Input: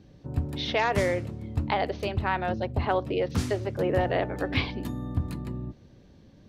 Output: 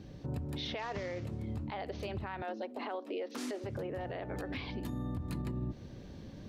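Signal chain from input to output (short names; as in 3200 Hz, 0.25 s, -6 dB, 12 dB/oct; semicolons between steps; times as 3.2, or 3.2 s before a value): 0.82–1.25 CVSD 32 kbps; 2.42–3.64 elliptic high-pass 240 Hz, stop band 40 dB; compressor 10:1, threshold -34 dBFS, peak gain reduction 15 dB; limiter -33 dBFS, peak gain reduction 10.5 dB; vocal rider within 5 dB 2 s; gain +2.5 dB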